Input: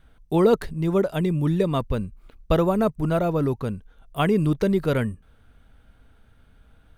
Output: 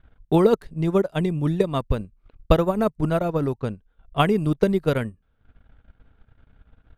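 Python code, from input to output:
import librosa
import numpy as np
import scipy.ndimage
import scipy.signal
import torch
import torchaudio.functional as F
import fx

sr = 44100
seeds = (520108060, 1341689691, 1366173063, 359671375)

y = fx.transient(x, sr, attack_db=7, sustain_db=-11)
y = fx.env_lowpass(y, sr, base_hz=2700.0, full_db=-16.0)
y = F.gain(torch.from_numpy(y), -1.5).numpy()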